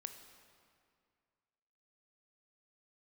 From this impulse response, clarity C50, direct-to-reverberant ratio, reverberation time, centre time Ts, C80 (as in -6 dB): 8.5 dB, 7.0 dB, 2.2 s, 27 ms, 9.5 dB